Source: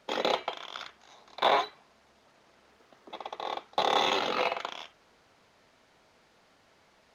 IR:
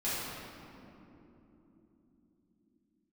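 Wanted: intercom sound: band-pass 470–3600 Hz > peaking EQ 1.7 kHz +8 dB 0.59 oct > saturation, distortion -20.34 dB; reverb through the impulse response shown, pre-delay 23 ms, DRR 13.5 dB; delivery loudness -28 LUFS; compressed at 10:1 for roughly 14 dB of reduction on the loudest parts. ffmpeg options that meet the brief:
-filter_complex "[0:a]acompressor=threshold=0.0178:ratio=10,asplit=2[s0][s1];[1:a]atrim=start_sample=2205,adelay=23[s2];[s1][s2]afir=irnorm=-1:irlink=0,volume=0.0891[s3];[s0][s3]amix=inputs=2:normalize=0,highpass=470,lowpass=3600,equalizer=f=1700:t=o:w=0.59:g=8,asoftclip=threshold=0.0531,volume=4.73"

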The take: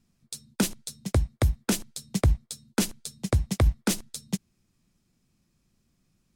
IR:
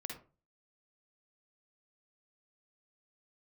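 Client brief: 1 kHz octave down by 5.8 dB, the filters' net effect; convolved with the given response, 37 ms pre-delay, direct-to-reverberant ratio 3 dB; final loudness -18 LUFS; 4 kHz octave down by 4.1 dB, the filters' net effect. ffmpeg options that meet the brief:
-filter_complex "[0:a]equalizer=f=1000:t=o:g=-8,equalizer=f=4000:t=o:g=-5,asplit=2[s0][s1];[1:a]atrim=start_sample=2205,adelay=37[s2];[s1][s2]afir=irnorm=-1:irlink=0,volume=0.841[s3];[s0][s3]amix=inputs=2:normalize=0,volume=2.82"

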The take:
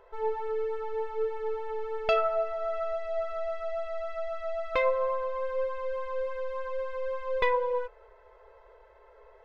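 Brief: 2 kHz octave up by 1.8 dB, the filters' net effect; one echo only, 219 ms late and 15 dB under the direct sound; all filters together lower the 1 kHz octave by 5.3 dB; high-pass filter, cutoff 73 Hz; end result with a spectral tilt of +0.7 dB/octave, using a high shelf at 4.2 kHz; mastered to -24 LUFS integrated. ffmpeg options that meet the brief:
-af "highpass=73,equalizer=f=1000:t=o:g=-8,equalizer=f=2000:t=o:g=5,highshelf=f=4200:g=-5.5,aecho=1:1:219:0.178,volume=2.99"

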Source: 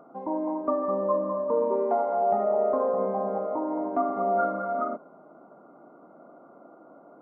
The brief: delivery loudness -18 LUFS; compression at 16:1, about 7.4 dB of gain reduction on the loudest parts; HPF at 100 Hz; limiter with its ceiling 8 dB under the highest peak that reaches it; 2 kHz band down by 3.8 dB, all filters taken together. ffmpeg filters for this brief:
-af "highpass=100,equalizer=f=2000:t=o:g=-7.5,acompressor=threshold=0.0398:ratio=16,volume=6.68,alimiter=limit=0.335:level=0:latency=1"

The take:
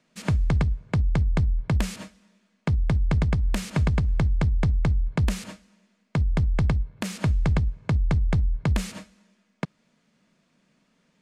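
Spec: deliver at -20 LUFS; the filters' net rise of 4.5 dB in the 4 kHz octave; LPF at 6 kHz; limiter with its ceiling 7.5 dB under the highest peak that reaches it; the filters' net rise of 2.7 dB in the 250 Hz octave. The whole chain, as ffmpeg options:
-af "lowpass=6000,equalizer=f=250:t=o:g=4.5,equalizer=f=4000:t=o:g=6.5,volume=2.11,alimiter=limit=0.335:level=0:latency=1"

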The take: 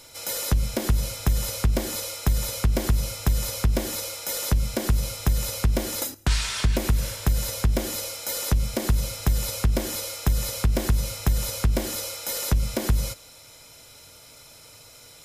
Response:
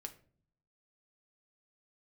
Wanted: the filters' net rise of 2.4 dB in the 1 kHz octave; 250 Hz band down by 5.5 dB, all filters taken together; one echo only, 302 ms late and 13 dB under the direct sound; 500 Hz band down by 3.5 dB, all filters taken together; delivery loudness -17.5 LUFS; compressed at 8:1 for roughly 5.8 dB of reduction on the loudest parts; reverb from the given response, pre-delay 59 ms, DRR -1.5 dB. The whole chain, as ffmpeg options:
-filter_complex "[0:a]equalizer=f=250:t=o:g=-7.5,equalizer=f=500:t=o:g=-3.5,equalizer=f=1000:t=o:g=4.5,acompressor=threshold=0.0794:ratio=8,aecho=1:1:302:0.224,asplit=2[s0][s1];[1:a]atrim=start_sample=2205,adelay=59[s2];[s1][s2]afir=irnorm=-1:irlink=0,volume=1.88[s3];[s0][s3]amix=inputs=2:normalize=0,volume=2.37"

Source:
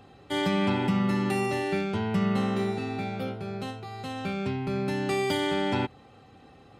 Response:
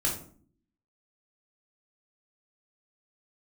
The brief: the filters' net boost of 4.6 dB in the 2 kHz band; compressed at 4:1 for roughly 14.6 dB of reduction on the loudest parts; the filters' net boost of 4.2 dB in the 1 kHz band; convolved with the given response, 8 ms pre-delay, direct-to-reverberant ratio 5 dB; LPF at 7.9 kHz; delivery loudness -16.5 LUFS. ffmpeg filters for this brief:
-filter_complex "[0:a]lowpass=7900,equalizer=f=1000:t=o:g=4.5,equalizer=f=2000:t=o:g=4.5,acompressor=threshold=0.0112:ratio=4,asplit=2[s0][s1];[1:a]atrim=start_sample=2205,adelay=8[s2];[s1][s2]afir=irnorm=-1:irlink=0,volume=0.237[s3];[s0][s3]amix=inputs=2:normalize=0,volume=10.6"

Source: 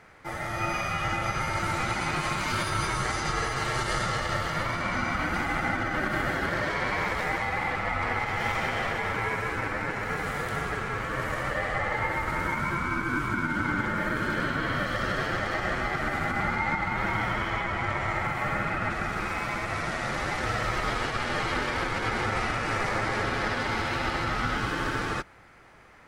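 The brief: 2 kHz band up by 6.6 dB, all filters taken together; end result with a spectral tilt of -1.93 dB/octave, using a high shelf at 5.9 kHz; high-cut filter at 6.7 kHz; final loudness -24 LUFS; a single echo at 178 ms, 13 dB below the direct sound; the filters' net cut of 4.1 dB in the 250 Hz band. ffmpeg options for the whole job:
-af "lowpass=6700,equalizer=f=250:t=o:g=-6,equalizer=f=2000:t=o:g=8.5,highshelf=f=5900:g=-5.5,aecho=1:1:178:0.224"

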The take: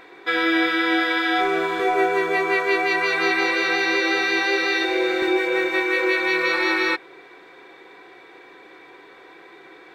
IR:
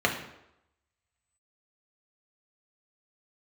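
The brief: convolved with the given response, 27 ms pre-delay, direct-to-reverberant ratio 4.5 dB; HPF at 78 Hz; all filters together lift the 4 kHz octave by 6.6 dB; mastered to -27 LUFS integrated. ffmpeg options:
-filter_complex "[0:a]highpass=78,equalizer=f=4000:t=o:g=7.5,asplit=2[s0][s1];[1:a]atrim=start_sample=2205,adelay=27[s2];[s1][s2]afir=irnorm=-1:irlink=0,volume=0.119[s3];[s0][s3]amix=inputs=2:normalize=0,volume=0.299"

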